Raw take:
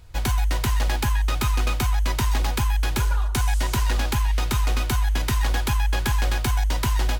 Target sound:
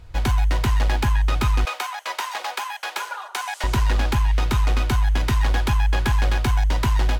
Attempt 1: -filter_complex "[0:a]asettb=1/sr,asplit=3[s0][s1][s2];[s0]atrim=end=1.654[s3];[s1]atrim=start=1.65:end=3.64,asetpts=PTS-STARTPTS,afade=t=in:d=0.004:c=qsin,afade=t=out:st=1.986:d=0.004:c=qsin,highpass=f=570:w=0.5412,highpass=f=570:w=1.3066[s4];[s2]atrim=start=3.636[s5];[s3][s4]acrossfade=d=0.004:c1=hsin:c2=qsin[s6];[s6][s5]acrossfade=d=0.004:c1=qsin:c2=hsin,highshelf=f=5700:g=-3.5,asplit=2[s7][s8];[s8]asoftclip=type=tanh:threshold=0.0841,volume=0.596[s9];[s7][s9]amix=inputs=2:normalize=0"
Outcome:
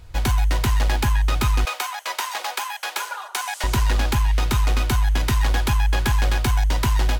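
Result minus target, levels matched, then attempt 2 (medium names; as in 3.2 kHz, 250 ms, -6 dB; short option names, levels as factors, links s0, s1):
8 kHz band +4.5 dB
-filter_complex "[0:a]asettb=1/sr,asplit=3[s0][s1][s2];[s0]atrim=end=1.654[s3];[s1]atrim=start=1.65:end=3.64,asetpts=PTS-STARTPTS,afade=t=in:d=0.004:c=qsin,afade=t=out:st=1.986:d=0.004:c=qsin,highpass=f=570:w=0.5412,highpass=f=570:w=1.3066[s4];[s2]atrim=start=3.636[s5];[s3][s4]acrossfade=d=0.004:c1=hsin:c2=qsin[s6];[s6][s5]acrossfade=d=0.004:c1=qsin:c2=hsin,highshelf=f=5700:g=-11.5,asplit=2[s7][s8];[s8]asoftclip=type=tanh:threshold=0.0841,volume=0.596[s9];[s7][s9]amix=inputs=2:normalize=0"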